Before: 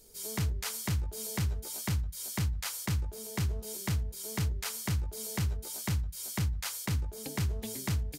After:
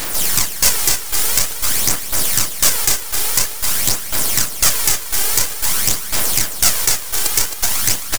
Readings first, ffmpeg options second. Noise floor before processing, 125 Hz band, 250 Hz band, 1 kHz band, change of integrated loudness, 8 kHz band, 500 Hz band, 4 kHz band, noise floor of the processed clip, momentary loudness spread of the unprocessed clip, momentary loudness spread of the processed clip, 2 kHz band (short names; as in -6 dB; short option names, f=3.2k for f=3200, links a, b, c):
-44 dBFS, -1.0 dB, +5.0 dB, +17.5 dB, +19.0 dB, +24.0 dB, +12.5 dB, +22.0 dB, -26 dBFS, 3 LU, 3 LU, +18.5 dB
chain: -filter_complex "[0:a]acrossover=split=4400[a][b];[b]acompressor=threshold=-53dB:ratio=4:attack=1:release=60[c];[a][c]amix=inputs=2:normalize=0,highpass=f=1.2k:w=0.5412,highpass=f=1.2k:w=1.3066,aemphasis=mode=reproduction:type=cd,asplit=2[d][e];[e]acompressor=threshold=-57dB:ratio=6,volume=1dB[f];[d][f]amix=inputs=2:normalize=0,aeval=exprs='0.0708*(cos(1*acos(clip(val(0)/0.0708,-1,1)))-cos(1*PI/2))+0.0355*(cos(2*acos(clip(val(0)/0.0708,-1,1)))-cos(2*PI/2))+0.00447*(cos(7*acos(clip(val(0)/0.0708,-1,1)))-cos(7*PI/2))+0.0224*(cos(8*acos(clip(val(0)/0.0708,-1,1)))-cos(8*PI/2))':c=same,aexciter=amount=15.6:drive=6:freq=5.2k,acrusher=bits=4:dc=4:mix=0:aa=0.000001,aphaser=in_gain=1:out_gain=1:delay=2.6:decay=0.4:speed=0.49:type=sinusoidal,apsyclip=19dB,asoftclip=type=tanh:threshold=-6.5dB,aecho=1:1:266:0.355"